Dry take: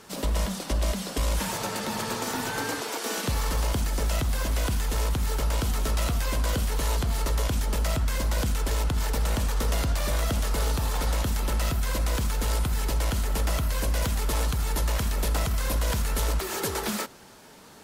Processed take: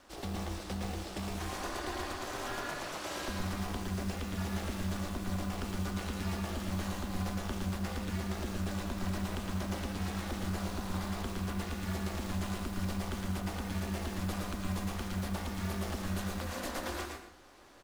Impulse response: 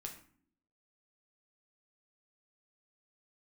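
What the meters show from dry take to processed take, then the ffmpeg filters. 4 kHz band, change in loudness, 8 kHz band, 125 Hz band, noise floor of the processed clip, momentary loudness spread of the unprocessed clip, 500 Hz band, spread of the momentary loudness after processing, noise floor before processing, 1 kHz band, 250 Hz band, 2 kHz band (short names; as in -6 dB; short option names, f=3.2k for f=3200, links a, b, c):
-10.0 dB, -9.5 dB, -13.0 dB, -9.0 dB, -45 dBFS, 2 LU, -8.5 dB, 2 LU, -39 dBFS, -7.5 dB, -1.5 dB, -7.5 dB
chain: -filter_complex "[0:a]aeval=exprs='val(0)*sin(2*PI*140*n/s)':c=same,highshelf=f=7.4k:g=-11,bandreject=f=440:w=12,alimiter=limit=-20.5dB:level=0:latency=1:release=270,aecho=1:1:121:0.251,acrusher=bits=6:mode=log:mix=0:aa=0.000001,equalizer=f=130:t=o:w=0.79:g=-8.5,asplit=2[a][b];[1:a]atrim=start_sample=2205,adelay=111[c];[b][c]afir=irnorm=-1:irlink=0,volume=1dB[d];[a][d]amix=inputs=2:normalize=0,volume=-5.5dB"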